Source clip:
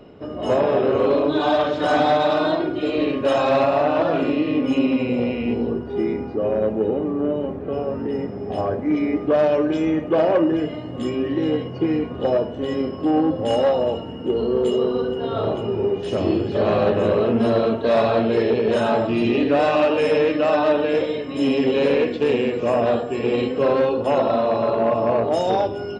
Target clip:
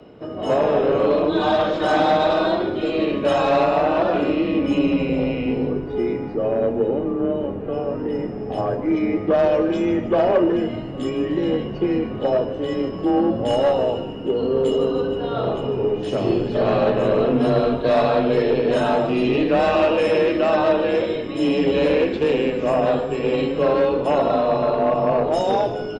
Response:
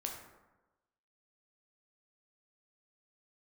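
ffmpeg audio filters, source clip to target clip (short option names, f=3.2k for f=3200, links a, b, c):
-filter_complex "[0:a]afreqshift=20,asplit=5[a][b][c][d][e];[b]adelay=151,afreqshift=-110,volume=-12dB[f];[c]adelay=302,afreqshift=-220,volume=-19.5dB[g];[d]adelay=453,afreqshift=-330,volume=-27.1dB[h];[e]adelay=604,afreqshift=-440,volume=-34.6dB[i];[a][f][g][h][i]amix=inputs=5:normalize=0"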